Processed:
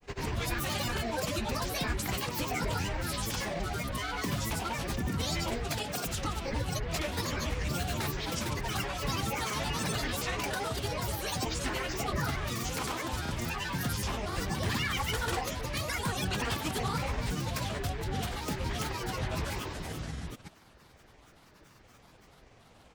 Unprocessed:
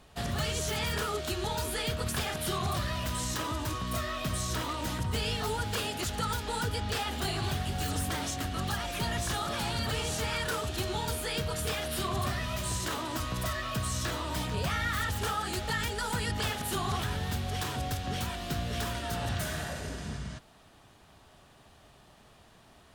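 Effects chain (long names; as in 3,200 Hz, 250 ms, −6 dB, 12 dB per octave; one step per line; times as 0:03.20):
granular cloud, grains 21 per second, pitch spread up and down by 12 semitones
level +1 dB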